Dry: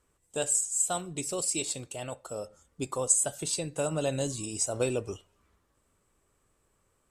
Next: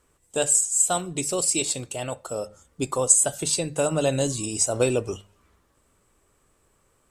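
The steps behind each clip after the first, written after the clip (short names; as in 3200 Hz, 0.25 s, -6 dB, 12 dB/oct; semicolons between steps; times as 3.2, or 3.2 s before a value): notches 50/100/150/200 Hz; gain +7 dB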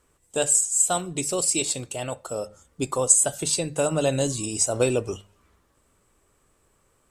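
nothing audible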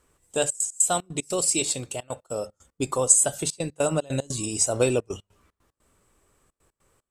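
step gate "xxxxx.x.xx.x.xx" 150 bpm -24 dB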